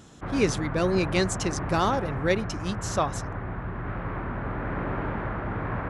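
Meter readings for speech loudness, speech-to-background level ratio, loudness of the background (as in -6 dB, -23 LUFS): -27.5 LUFS, 5.5 dB, -33.0 LUFS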